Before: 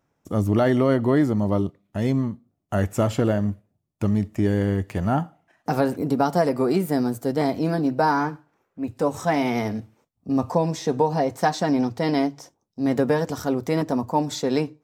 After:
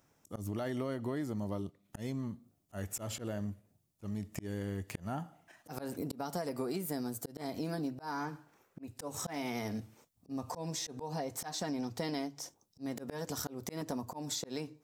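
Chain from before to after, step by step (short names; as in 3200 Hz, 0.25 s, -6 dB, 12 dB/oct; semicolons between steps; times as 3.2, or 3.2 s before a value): high shelf 3700 Hz +11.5 dB; auto swell 0.505 s; compressor 6:1, threshold -35 dBFS, peak gain reduction 18.5 dB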